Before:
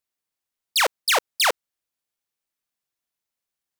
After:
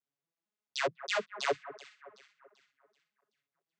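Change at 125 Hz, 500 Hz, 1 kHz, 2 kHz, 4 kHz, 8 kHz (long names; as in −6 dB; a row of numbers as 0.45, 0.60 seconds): can't be measured, −6.5 dB, −12.5 dB, −12.5 dB, −16.0 dB, −20.0 dB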